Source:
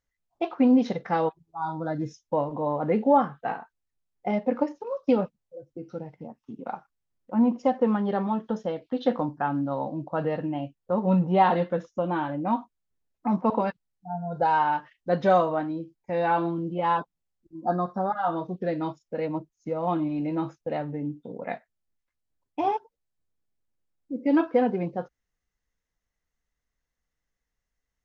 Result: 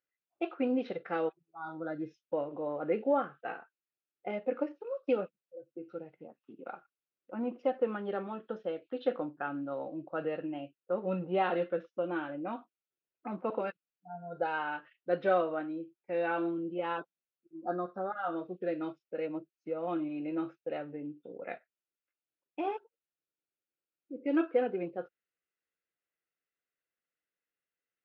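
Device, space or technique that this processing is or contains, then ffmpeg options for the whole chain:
kitchen radio: -af "highpass=220,equalizer=frequency=230:width_type=q:width=4:gain=-5,equalizer=frequency=350:width_type=q:width=4:gain=7,equalizer=frequency=520:width_type=q:width=4:gain=4,equalizer=frequency=950:width_type=q:width=4:gain=-9,equalizer=frequency=1400:width_type=q:width=4:gain=8,equalizer=frequency=2600:width_type=q:width=4:gain=8,lowpass=frequency=4000:width=0.5412,lowpass=frequency=4000:width=1.3066,volume=-9dB"

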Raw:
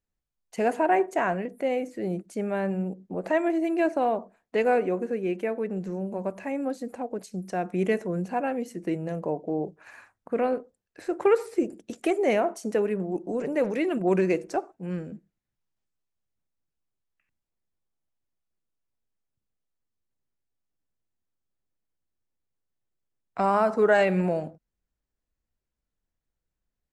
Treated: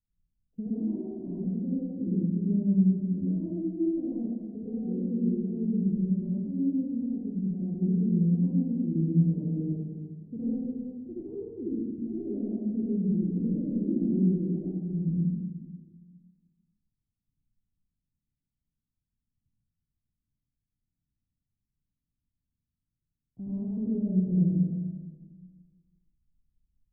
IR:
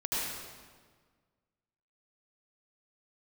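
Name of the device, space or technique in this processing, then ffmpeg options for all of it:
club heard from the street: -filter_complex "[0:a]alimiter=limit=-18dB:level=0:latency=1:release=151,lowpass=frequency=220:width=0.5412,lowpass=frequency=220:width=1.3066[link_01];[1:a]atrim=start_sample=2205[link_02];[link_01][link_02]afir=irnorm=-1:irlink=0,volume=3dB"

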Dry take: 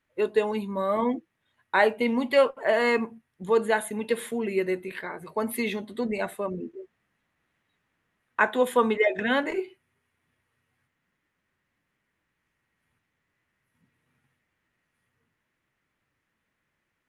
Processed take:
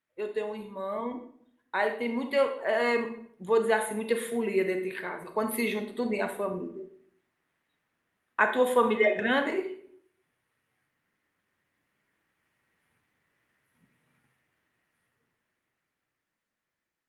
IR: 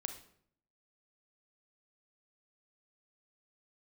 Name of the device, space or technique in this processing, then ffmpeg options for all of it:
far-field microphone of a smart speaker: -filter_complex "[0:a]asplit=3[link_01][link_02][link_03];[link_01]afade=type=out:start_time=8.84:duration=0.02[link_04];[link_02]equalizer=frequency=130:width=2.1:gain=4,afade=type=in:start_time=8.84:duration=0.02,afade=type=out:start_time=9.31:duration=0.02[link_05];[link_03]afade=type=in:start_time=9.31:duration=0.02[link_06];[link_04][link_05][link_06]amix=inputs=3:normalize=0[link_07];[1:a]atrim=start_sample=2205[link_08];[link_07][link_08]afir=irnorm=-1:irlink=0,highpass=frequency=150:poles=1,dynaudnorm=framelen=470:gausssize=11:maxgain=13dB,volume=-6.5dB" -ar 48000 -c:a libopus -b:a 48k

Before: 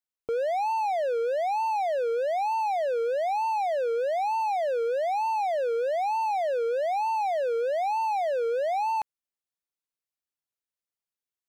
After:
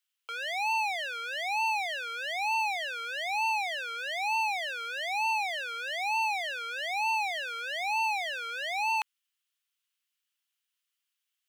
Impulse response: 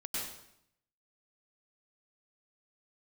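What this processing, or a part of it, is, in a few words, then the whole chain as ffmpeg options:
headphones lying on a table: -af "highpass=frequency=1200:width=0.5412,highpass=frequency=1200:width=1.3066,equalizer=frequency=3000:width_type=o:width=0.47:gain=9,volume=7.5dB"

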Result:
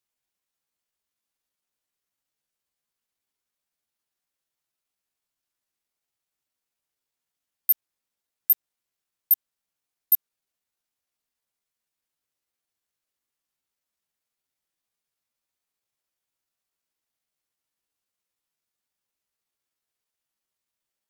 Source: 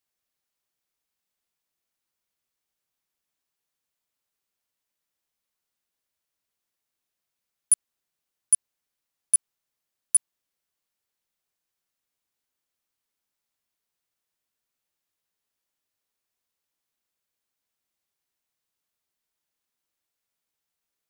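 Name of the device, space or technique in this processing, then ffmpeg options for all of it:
chipmunk voice: -af "asetrate=58866,aresample=44100,atempo=0.749154"

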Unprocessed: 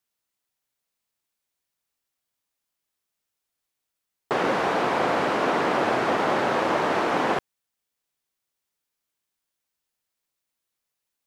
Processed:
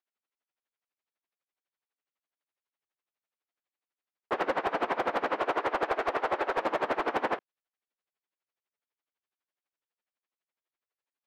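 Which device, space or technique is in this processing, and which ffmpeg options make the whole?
helicopter radio: -filter_complex "[0:a]asettb=1/sr,asplit=3[link_01][link_02][link_03];[link_01]atrim=end=5.394[link_04];[link_02]atrim=start=5.39:end=6.6,asetpts=PTS-STARTPTS,afade=type=in:duration=0.004:curve=qsin,afade=type=out:start_time=1.206:duration=0.004:curve=qsin,highpass=frequency=290:width=0.5412,highpass=frequency=290:width=1.3066[link_05];[link_03]atrim=start=6.596[link_06];[link_04][link_05]acrossfade=duration=0.004:curve1=hsin:curve2=qsin[link_07];[link_07][link_06]acrossfade=duration=0.004:curve1=qsin:curve2=hsin,highpass=300,lowpass=2700,aeval=exprs='val(0)*pow(10,-20*(0.5-0.5*cos(2*PI*12*n/s))/20)':channel_layout=same,asoftclip=type=hard:threshold=-21dB"

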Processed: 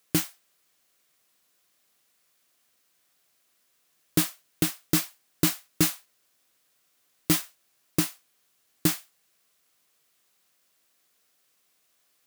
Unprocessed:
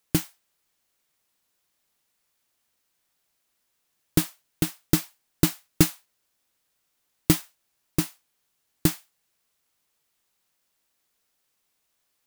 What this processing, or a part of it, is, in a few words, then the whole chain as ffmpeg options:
PA system with an anti-feedback notch: -af "highpass=frequency=160:poles=1,asuperstop=centerf=890:order=4:qfactor=7.9,alimiter=limit=-14.5dB:level=0:latency=1:release=31,volume=5.5dB"

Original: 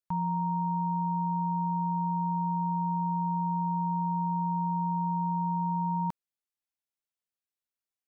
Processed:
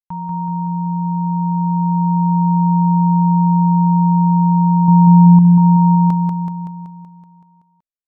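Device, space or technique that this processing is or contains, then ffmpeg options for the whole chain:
voice memo with heavy noise removal: -filter_complex "[0:a]asettb=1/sr,asplit=3[link_01][link_02][link_03];[link_01]atrim=end=4.884[link_04];[link_02]atrim=start=4.88:end=5.39,asetpts=PTS-STARTPTS,afade=type=in:duration=0.004:curve=qsin,afade=type=out:start_time=0.506:duration=0.004:curve=qsin,tiltshelf=frequency=970:gain=9.5[link_05];[link_03]atrim=start=5.386[link_06];[link_04][link_05]acrossfade=duration=0.004:curve1=hsin:curve2=qsin[link_07];[link_07][link_06]acrossfade=duration=0.004:curve1=qsin:curve2=hsin,anlmdn=0.1,dynaudnorm=framelen=400:gausssize=9:maxgain=7dB,aecho=1:1:189|378|567|756|945|1134|1323|1512|1701:0.631|0.379|0.227|0.136|0.0818|0.0491|0.0294|0.0177|0.0106,volume=4dB"

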